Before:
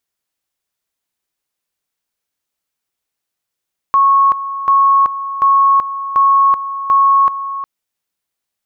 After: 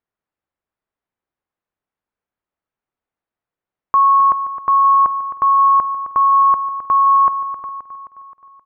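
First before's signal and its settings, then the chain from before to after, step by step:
two-level tone 1100 Hz -7 dBFS, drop 12.5 dB, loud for 0.38 s, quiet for 0.36 s, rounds 5
LPF 1500 Hz 12 dB/oct; on a send: feedback echo 0.263 s, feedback 58%, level -11 dB

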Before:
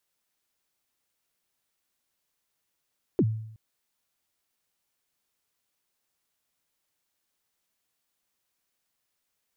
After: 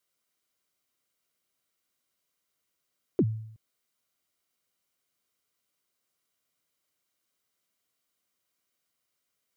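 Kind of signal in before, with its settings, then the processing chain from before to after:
kick drum length 0.37 s, from 440 Hz, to 110 Hz, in 53 ms, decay 0.73 s, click off, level -16.5 dB
notch comb 870 Hz

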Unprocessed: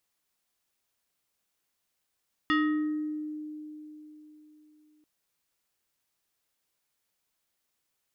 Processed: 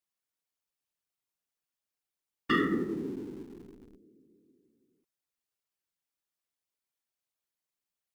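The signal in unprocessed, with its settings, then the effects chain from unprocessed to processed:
FM tone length 2.54 s, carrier 304 Hz, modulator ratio 5.17, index 1.4, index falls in 1.01 s exponential, decay 3.74 s, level -21 dB
whisperiser; in parallel at -10.5 dB: Schmitt trigger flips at -40.5 dBFS; on the sum: upward expander 1.5:1, over -47 dBFS

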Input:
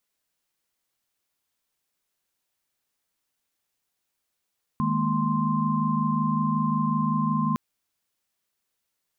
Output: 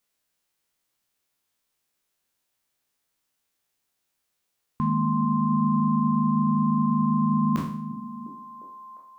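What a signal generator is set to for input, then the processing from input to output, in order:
chord D#3/G#3/A#3/C6 sine, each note -27 dBFS 2.76 s
spectral trails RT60 0.54 s; on a send: delay with a stepping band-pass 0.352 s, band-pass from 180 Hz, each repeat 0.7 oct, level -8 dB

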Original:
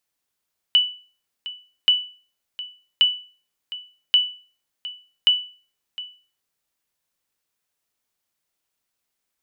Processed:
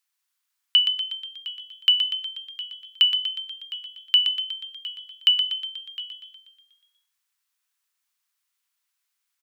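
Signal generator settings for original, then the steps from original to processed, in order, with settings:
sonar ping 2970 Hz, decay 0.39 s, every 1.13 s, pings 5, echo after 0.71 s, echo -16.5 dB -8.5 dBFS
HPF 990 Hz 24 dB/oct; on a send: frequency-shifting echo 0.121 s, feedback 60%, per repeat +44 Hz, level -7 dB

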